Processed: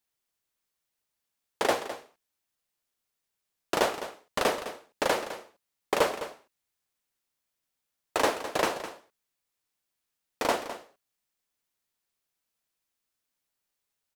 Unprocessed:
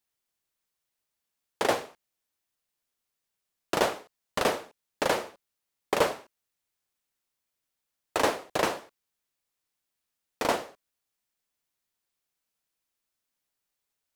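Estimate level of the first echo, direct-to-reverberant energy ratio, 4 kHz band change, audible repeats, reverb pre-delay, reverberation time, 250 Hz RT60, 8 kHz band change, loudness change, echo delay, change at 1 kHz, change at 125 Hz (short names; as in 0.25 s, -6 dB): -12.5 dB, none, 0.0 dB, 1, none, none, none, 0.0 dB, -0.5 dB, 0.208 s, 0.0 dB, -3.5 dB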